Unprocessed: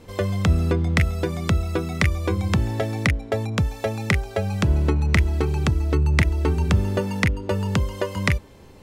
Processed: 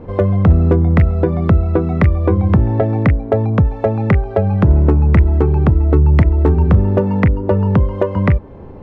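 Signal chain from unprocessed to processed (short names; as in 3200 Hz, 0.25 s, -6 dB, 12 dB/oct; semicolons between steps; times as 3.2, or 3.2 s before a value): LPF 1000 Hz 12 dB/oct; in parallel at 0 dB: compressor 12:1, threshold -28 dBFS, peak gain reduction 15.5 dB; on the sum: hard clip -9.5 dBFS, distortion -29 dB; gain +7 dB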